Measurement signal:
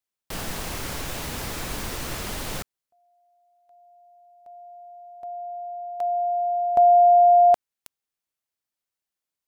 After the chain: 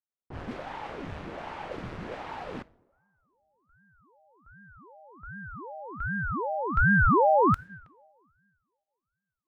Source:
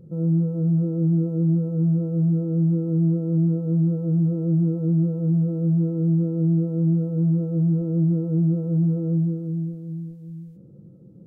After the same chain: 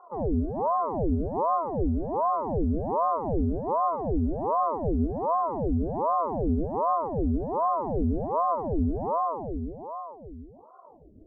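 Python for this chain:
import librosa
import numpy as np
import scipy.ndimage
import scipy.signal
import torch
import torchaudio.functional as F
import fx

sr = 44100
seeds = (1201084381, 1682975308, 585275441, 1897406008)

y = fx.rev_double_slope(x, sr, seeds[0], early_s=0.92, late_s=3.5, knee_db=-24, drr_db=17.0)
y = fx.env_lowpass(y, sr, base_hz=700.0, full_db=-17.5)
y = fx.ring_lfo(y, sr, carrier_hz=490.0, swing_pct=85, hz=1.3)
y = F.gain(torch.from_numpy(y), -3.0).numpy()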